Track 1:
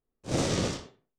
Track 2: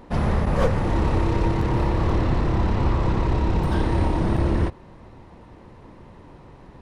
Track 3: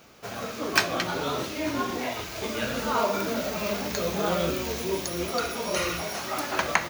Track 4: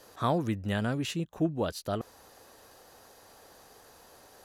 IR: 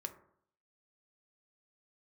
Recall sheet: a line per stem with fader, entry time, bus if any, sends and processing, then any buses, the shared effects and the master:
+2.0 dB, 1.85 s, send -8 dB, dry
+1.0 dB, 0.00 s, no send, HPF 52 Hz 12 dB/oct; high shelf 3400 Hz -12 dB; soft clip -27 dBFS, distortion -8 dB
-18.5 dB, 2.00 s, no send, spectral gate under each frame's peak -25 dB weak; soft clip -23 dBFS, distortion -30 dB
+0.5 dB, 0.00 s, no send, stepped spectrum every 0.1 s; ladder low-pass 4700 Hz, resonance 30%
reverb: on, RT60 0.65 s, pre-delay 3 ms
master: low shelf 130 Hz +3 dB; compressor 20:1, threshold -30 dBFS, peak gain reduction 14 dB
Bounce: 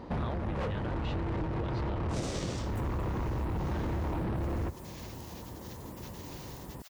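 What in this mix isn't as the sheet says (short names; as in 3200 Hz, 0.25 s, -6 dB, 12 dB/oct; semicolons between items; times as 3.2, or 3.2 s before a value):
stem 3 -18.5 dB -> -12.0 dB; stem 4: missing stepped spectrum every 0.1 s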